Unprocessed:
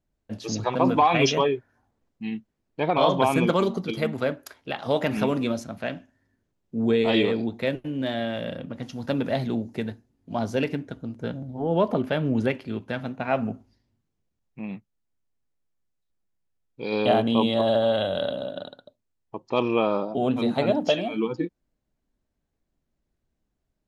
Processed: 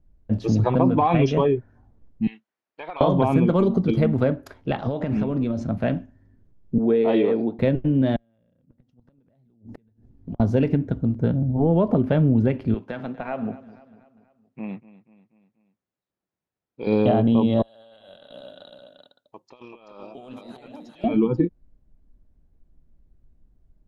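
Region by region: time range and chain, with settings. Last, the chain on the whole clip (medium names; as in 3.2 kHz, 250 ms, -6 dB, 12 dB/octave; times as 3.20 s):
2.27–3.01 s: high-pass 1.2 kHz + compression 5:1, threshold -34 dBFS
4.82–5.68 s: low-pass 7.5 kHz 24 dB/octave + compression 8:1, threshold -30 dBFS
6.78–7.59 s: high-pass 360 Hz + treble shelf 2.8 kHz -10 dB
8.16–10.40 s: compression 4:1, threshold -41 dBFS + inverted gate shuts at -34 dBFS, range -32 dB
12.74–16.87 s: frequency weighting A + compression 2.5:1, threshold -33 dBFS + feedback delay 242 ms, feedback 52%, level -18 dB
17.62–21.04 s: differentiator + compressor with a negative ratio -51 dBFS + delay 384 ms -6 dB
whole clip: tilt EQ -4 dB/octave; compression 5:1, threshold -18 dBFS; trim +3 dB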